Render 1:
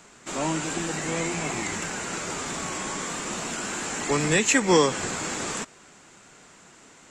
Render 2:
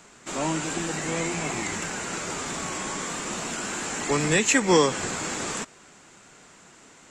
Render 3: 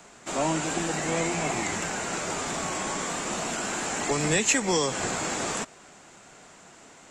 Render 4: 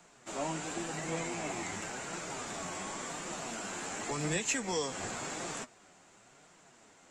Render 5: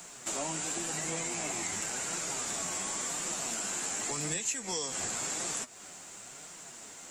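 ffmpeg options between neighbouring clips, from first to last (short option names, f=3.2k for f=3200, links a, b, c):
-af anull
-filter_complex "[0:a]equalizer=f=690:w=2.2:g=5.5,acrossover=split=120|3400[a][b][c];[b]alimiter=limit=-17dB:level=0:latency=1:release=167[d];[a][d][c]amix=inputs=3:normalize=0"
-af "flanger=delay=5.5:depth=6.3:regen=47:speed=0.92:shape=triangular,volume=-5.5dB"
-af "aemphasis=mode=production:type=75kf,acompressor=threshold=-40dB:ratio=4,volume=6.5dB"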